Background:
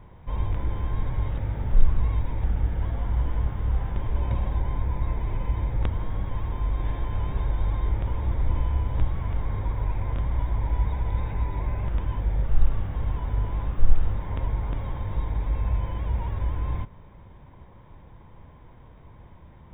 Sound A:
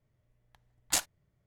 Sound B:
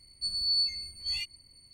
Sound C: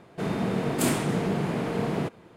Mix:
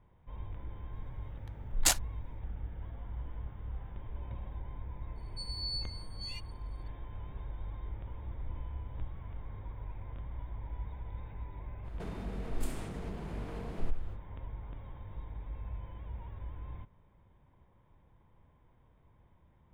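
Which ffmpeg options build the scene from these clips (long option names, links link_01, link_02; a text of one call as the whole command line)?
ffmpeg -i bed.wav -i cue0.wav -i cue1.wav -i cue2.wav -filter_complex "[0:a]volume=-16dB[link_01];[1:a]acontrast=66[link_02];[2:a]agate=range=-33dB:threshold=-52dB:ratio=3:release=100:detection=peak[link_03];[3:a]acompressor=threshold=-41dB:ratio=4:attack=82:release=60:knee=1:detection=rms[link_04];[link_02]atrim=end=1.46,asetpts=PTS-STARTPTS,volume=-4dB,afade=type=in:duration=0.004:curve=hsin,afade=type=out:start_time=1.456:duration=0.004:curve=hsin,adelay=930[link_05];[link_03]atrim=end=1.73,asetpts=PTS-STARTPTS,volume=-11dB,afade=type=in:duration=0.004:curve=hsin,afade=type=out:start_time=1.726:duration=0.004:curve=hsin,adelay=5150[link_06];[link_04]atrim=end=2.36,asetpts=PTS-STARTPTS,volume=-6.5dB,afade=type=in:duration=0.05,afade=type=out:start_time=2.31:duration=0.05,adelay=11820[link_07];[link_01][link_05][link_06][link_07]amix=inputs=4:normalize=0" out.wav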